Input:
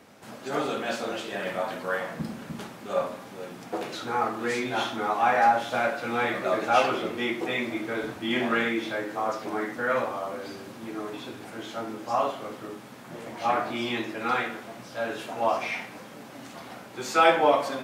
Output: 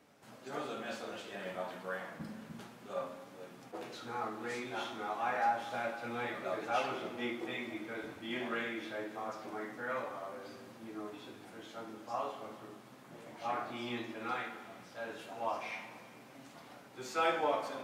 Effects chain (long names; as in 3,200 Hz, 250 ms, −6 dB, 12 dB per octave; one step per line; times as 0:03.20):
flanger 0.3 Hz, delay 6.7 ms, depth 4.5 ms, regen +69%
four-comb reverb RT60 2 s, combs from 33 ms, DRR 10.5 dB
level that may rise only so fast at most 390 dB per second
level −7.5 dB